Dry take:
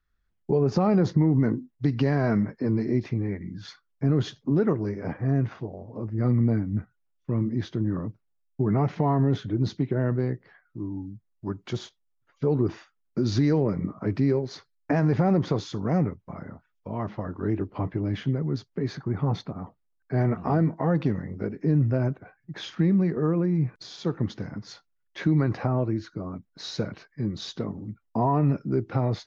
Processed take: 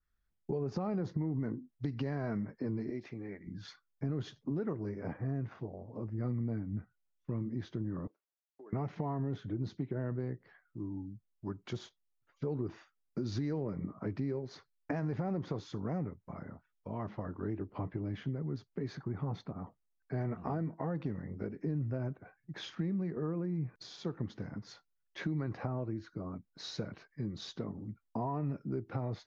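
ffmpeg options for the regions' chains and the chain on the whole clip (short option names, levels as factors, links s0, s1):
-filter_complex "[0:a]asettb=1/sr,asplit=3[s0][s1][s2];[s0]atrim=end=2.904[s3];[s1]atrim=start=2.9:end=3.47,asetpts=PTS-STARTPTS,afade=t=in:d=0.004:c=qsin,afade=t=out:st=0.566:d=0.004:c=qsin,highpass=f=530:p=1,equalizer=f=1000:t=o:w=0.3:g=-5.5[s4];[s2]atrim=start=3.466[s5];[s3][s4]acrossfade=d=0.004:c1=hsin:c2=qsin[s6];[s6][s5]acrossfade=d=0.004:c1=qsin:c2=hsin,asettb=1/sr,asplit=3[s7][s8][s9];[s7]atrim=end=8.074[s10];[s8]atrim=start=8.07:end=8.73,asetpts=PTS-STARTPTS,afade=t=in:d=0.004:c=qsin,afade=t=out:st=0.656:d=0.004:c=qsin,highpass=f=380:w=0.5412,highpass=f=380:w=1.3066,acompressor=threshold=0.00398:ratio=3:attack=3.2:release=140:knee=1:detection=peak[s11];[s9]atrim=start=8.726[s12];[s10][s11]acrossfade=d=0.004:c1=hsin:c2=qsin[s13];[s13][s12]acrossfade=d=0.004:c1=qsin:c2=hsin,acompressor=threshold=0.0398:ratio=2.5,adynamicequalizer=threshold=0.00224:dfrequency=2500:dqfactor=0.7:tfrequency=2500:tqfactor=0.7:attack=5:release=100:ratio=0.375:range=3:mode=cutabove:tftype=highshelf,volume=0.473"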